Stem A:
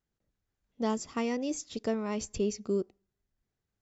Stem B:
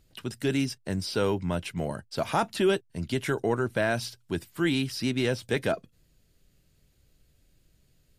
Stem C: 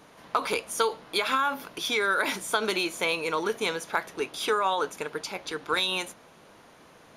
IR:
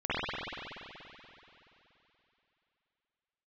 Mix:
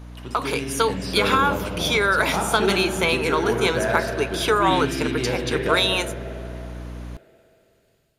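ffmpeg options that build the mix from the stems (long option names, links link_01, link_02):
-filter_complex "[0:a]volume=-14.5dB[link_01];[1:a]highpass=frequency=150:poles=1,adynamicequalizer=threshold=0.00631:dfrequency=1700:dqfactor=0.7:tfrequency=1700:tqfactor=0.7:attack=5:release=100:ratio=0.375:range=2:mode=cutabove:tftype=highshelf,volume=-5.5dB,asplit=2[link_02][link_03];[link_03]volume=-10dB[link_04];[2:a]aeval=exprs='val(0)+0.0112*(sin(2*PI*60*n/s)+sin(2*PI*2*60*n/s)/2+sin(2*PI*3*60*n/s)/3+sin(2*PI*4*60*n/s)/4+sin(2*PI*5*60*n/s)/5)':channel_layout=same,volume=1.5dB[link_05];[3:a]atrim=start_sample=2205[link_06];[link_04][link_06]afir=irnorm=-1:irlink=0[link_07];[link_01][link_02][link_05][link_07]amix=inputs=4:normalize=0,dynaudnorm=framelen=530:gausssize=3:maxgain=5dB"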